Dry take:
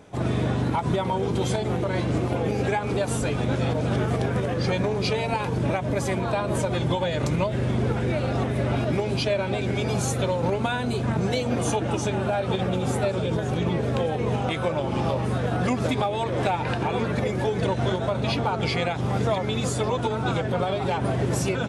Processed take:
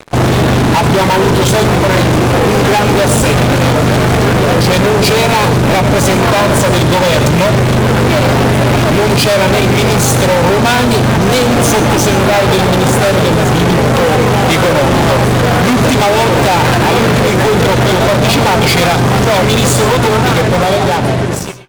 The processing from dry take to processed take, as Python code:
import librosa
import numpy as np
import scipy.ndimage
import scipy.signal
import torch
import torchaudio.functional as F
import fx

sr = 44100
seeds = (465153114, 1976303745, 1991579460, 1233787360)

y = fx.fade_out_tail(x, sr, length_s=1.93)
y = fx.fuzz(y, sr, gain_db=37.0, gate_db=-44.0)
y = fx.rev_gated(y, sr, seeds[0], gate_ms=150, shape='rising', drr_db=11.5)
y = y * librosa.db_to_amplitude(5.0)